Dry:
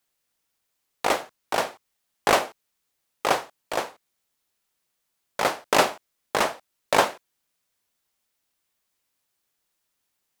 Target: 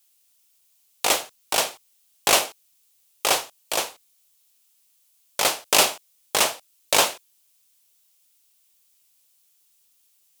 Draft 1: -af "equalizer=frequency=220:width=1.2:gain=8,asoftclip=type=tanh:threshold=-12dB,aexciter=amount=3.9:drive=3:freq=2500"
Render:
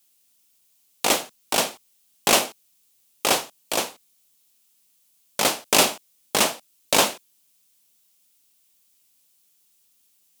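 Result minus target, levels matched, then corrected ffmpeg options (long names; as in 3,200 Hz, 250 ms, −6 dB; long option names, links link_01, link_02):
250 Hz band +7.0 dB
-af "equalizer=frequency=220:width=1.2:gain=-3.5,asoftclip=type=tanh:threshold=-12dB,aexciter=amount=3.9:drive=3:freq=2500"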